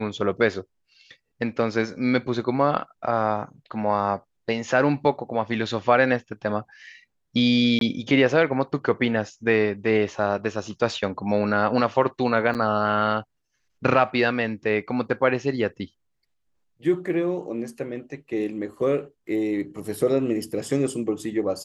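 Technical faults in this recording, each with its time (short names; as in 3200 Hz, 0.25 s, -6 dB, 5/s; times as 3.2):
7.79–7.81 gap 22 ms
12.54–12.55 gap 8.6 ms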